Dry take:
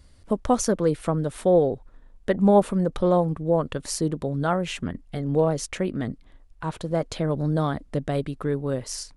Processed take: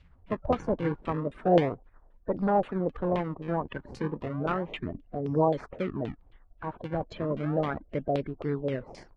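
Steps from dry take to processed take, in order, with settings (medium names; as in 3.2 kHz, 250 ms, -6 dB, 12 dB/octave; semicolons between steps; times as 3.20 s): coarse spectral quantiser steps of 30 dB; in parallel at -6.5 dB: decimation with a swept rate 39×, swing 160% 0.33 Hz; 1.69–3.77 s: on the sum: valve stage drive 14 dB, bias 0.5; LFO low-pass saw down 3.8 Hz 530–3100 Hz; trim -8 dB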